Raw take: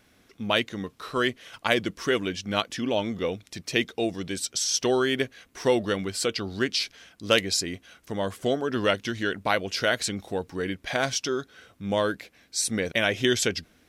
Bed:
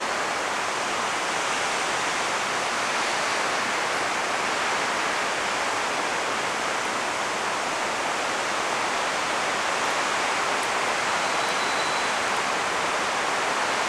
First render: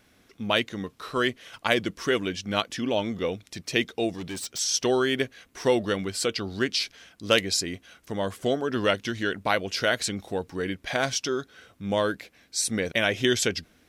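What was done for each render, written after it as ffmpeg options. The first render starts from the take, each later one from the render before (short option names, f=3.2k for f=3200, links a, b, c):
-filter_complex "[0:a]asettb=1/sr,asplit=3[a][b][c];[a]atrim=end=4.144[d];[b]atrim=start=4.14:end=4.59,asetpts=PTS-STARTPTS,afade=t=in:d=0.004:c=qsin,afade=t=out:st=0.446:d=0.004:c=qsin,volume=31dB,asoftclip=hard,volume=-31dB[e];[c]atrim=start=4.586[f];[d][e]acrossfade=d=0.004:c1=hsin:c2=qsin[g];[g][f]acrossfade=d=0.004:c1=qsin:c2=hsin"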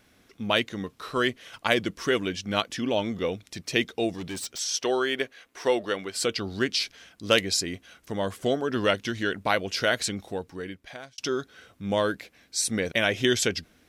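-filter_complex "[0:a]asettb=1/sr,asplit=3[a][b][c];[a]atrim=end=4.554[d];[b]atrim=start=4.55:end=6.16,asetpts=PTS-STARTPTS,afade=t=in:d=0.004:c=qsin,afade=t=out:st=1.606:d=0.004:c=qsin,bass=f=250:g=-14,treble=f=4k:g=-4[e];[c]atrim=start=6.156[f];[d][e]acrossfade=d=0.004:c1=hsin:c2=qsin[g];[g][f]acrossfade=d=0.004:c1=qsin:c2=hsin,asplit=2[h][i];[h]atrim=end=11.18,asetpts=PTS-STARTPTS,afade=t=out:st=10.05:d=1.13[j];[i]atrim=start=11.18,asetpts=PTS-STARTPTS,afade=t=in:d=0.004:c=hsin[k];[j][k]concat=n=2:v=0:a=1"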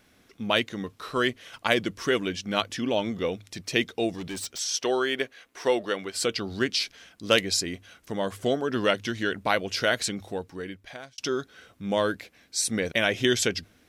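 -af "bandreject=f=50:t=h:w=6,bandreject=f=100:t=h:w=6"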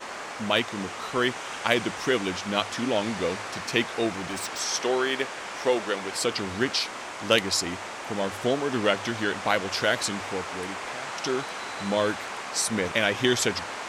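-filter_complex "[1:a]volume=-10.5dB[a];[0:a][a]amix=inputs=2:normalize=0"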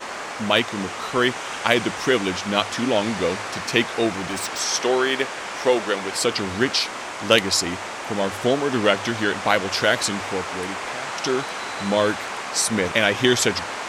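-af "volume=5dB,alimiter=limit=-1dB:level=0:latency=1"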